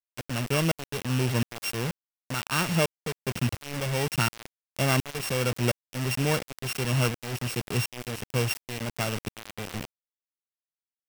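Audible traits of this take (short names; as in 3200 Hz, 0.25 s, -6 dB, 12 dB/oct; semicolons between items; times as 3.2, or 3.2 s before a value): a buzz of ramps at a fixed pitch in blocks of 16 samples; tremolo saw up 1.4 Hz, depth 95%; a quantiser's noise floor 6-bit, dither none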